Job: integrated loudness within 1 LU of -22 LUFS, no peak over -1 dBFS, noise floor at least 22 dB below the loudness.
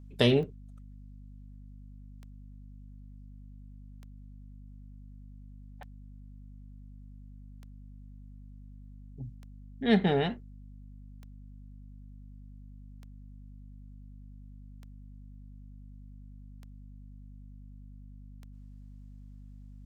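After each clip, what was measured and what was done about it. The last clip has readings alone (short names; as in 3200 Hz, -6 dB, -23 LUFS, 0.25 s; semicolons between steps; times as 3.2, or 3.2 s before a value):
clicks 11; hum 50 Hz; harmonics up to 250 Hz; hum level -46 dBFS; loudness -29.0 LUFS; peak -7.0 dBFS; loudness target -22.0 LUFS
-> de-click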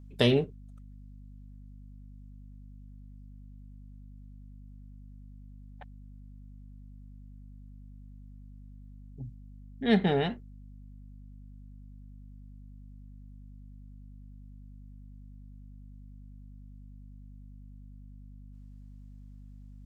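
clicks 0; hum 50 Hz; harmonics up to 250 Hz; hum level -46 dBFS
-> notches 50/100/150/200/250 Hz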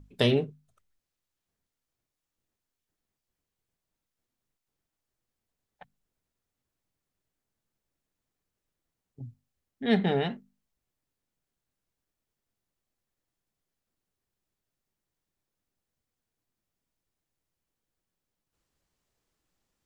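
hum none; loudness -27.5 LUFS; peak -7.5 dBFS; loudness target -22.0 LUFS
-> gain +5.5 dB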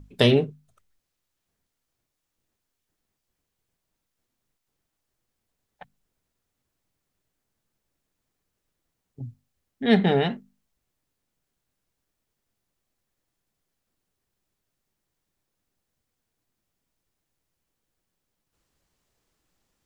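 loudness -22.0 LUFS; peak -2.0 dBFS; noise floor -82 dBFS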